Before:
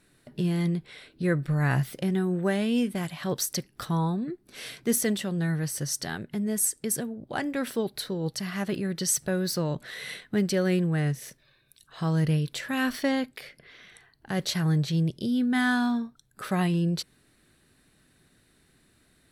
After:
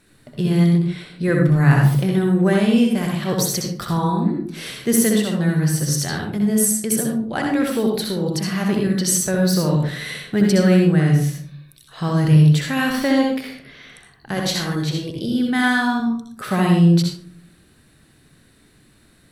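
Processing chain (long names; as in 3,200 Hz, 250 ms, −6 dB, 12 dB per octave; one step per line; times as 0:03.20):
0:14.34–0:16.00: parametric band 160 Hz −10.5 dB 0.61 octaves
convolution reverb RT60 0.55 s, pre-delay 64 ms, DRR 0.5 dB
level +5.5 dB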